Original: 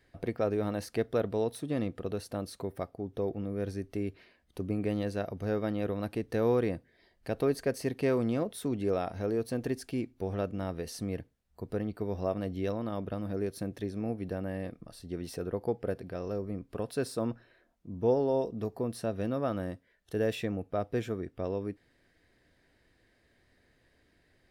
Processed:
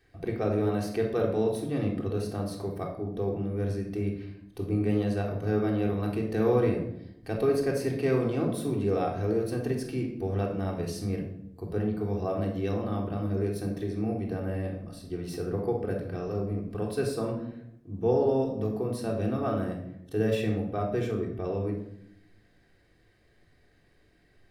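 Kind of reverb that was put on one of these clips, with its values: shoebox room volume 1900 m³, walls furnished, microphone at 3.6 m; gain -1.5 dB

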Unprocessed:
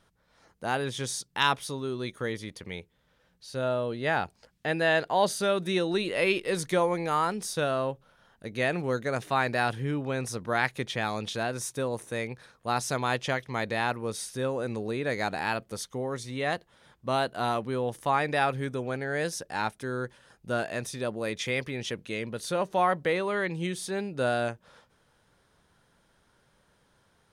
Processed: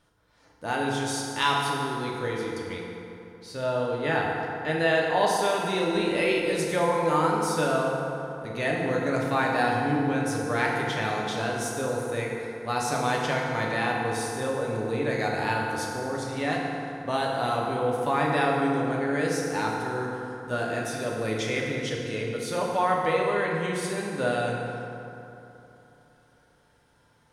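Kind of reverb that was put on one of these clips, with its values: FDN reverb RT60 3.1 s, high-frequency decay 0.5×, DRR -3 dB; gain -2 dB

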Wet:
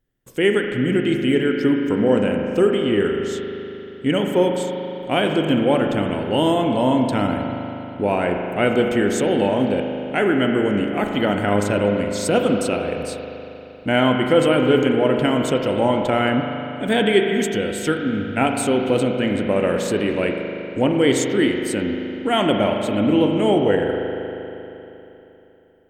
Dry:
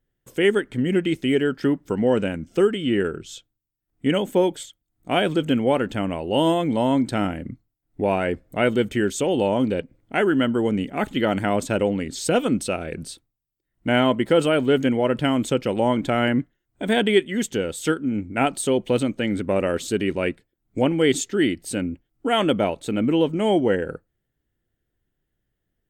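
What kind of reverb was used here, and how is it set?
spring tank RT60 3.3 s, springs 39 ms, chirp 80 ms, DRR 2.5 dB; gain +1 dB

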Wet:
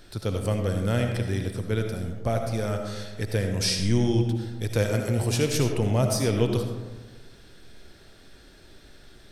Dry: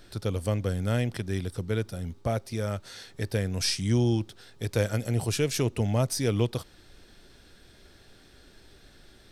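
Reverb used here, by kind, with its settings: digital reverb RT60 1.3 s, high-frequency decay 0.35×, pre-delay 35 ms, DRR 4 dB; gain +1.5 dB

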